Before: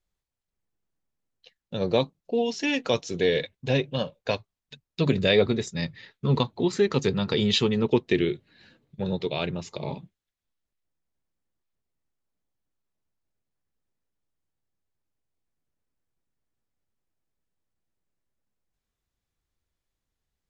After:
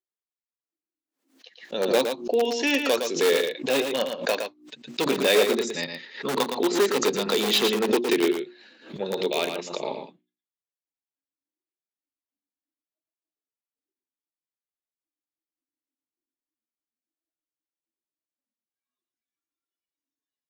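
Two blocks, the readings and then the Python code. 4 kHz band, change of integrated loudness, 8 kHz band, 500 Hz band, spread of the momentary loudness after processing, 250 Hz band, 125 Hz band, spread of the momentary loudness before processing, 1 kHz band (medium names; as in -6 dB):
+3.5 dB, +2.0 dB, no reading, +2.5 dB, 13 LU, -1.0 dB, -14.5 dB, 12 LU, +5.0 dB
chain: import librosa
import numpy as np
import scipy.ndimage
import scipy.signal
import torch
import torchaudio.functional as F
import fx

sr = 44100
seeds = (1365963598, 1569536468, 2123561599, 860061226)

p1 = fx.noise_reduce_blind(x, sr, reduce_db=19)
p2 = fx.hum_notches(p1, sr, base_hz=60, count=6)
p3 = (np.mod(10.0 ** (17.0 / 20.0) * p2 + 1.0, 2.0) - 1.0) / 10.0 ** (17.0 / 20.0)
p4 = p2 + (p3 * librosa.db_to_amplitude(-6.0))
p5 = scipy.signal.sosfilt(scipy.signal.butter(4, 270.0, 'highpass', fs=sr, output='sos'), p4)
p6 = p5 + fx.echo_single(p5, sr, ms=114, db=-6.5, dry=0)
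y = fx.pre_swell(p6, sr, db_per_s=130.0)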